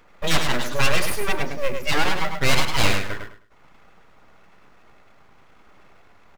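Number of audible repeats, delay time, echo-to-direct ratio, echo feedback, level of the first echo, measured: 3, 104 ms, −6.0 dB, 23%, −6.0 dB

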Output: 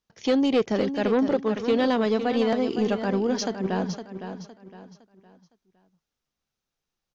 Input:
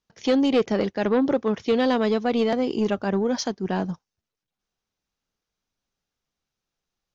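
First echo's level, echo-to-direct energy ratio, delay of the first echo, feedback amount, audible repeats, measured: −9.5 dB, −9.0 dB, 511 ms, 34%, 3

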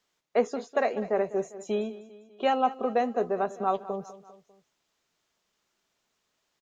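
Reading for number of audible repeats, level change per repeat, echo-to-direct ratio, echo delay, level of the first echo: 3, −5.5 dB, −15.0 dB, 199 ms, −16.5 dB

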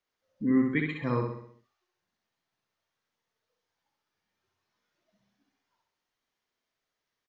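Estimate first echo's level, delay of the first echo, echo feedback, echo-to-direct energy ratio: −4.0 dB, 65 ms, 50%, −3.0 dB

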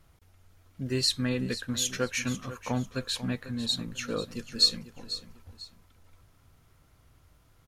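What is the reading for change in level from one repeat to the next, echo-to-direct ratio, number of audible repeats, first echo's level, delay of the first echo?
−10.0 dB, −13.0 dB, 2, −13.5 dB, 494 ms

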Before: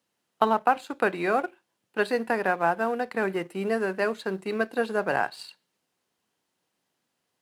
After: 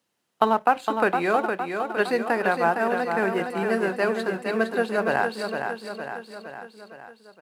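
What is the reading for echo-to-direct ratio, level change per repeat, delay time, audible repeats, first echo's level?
−4.5 dB, −5.0 dB, 461 ms, 5, −6.0 dB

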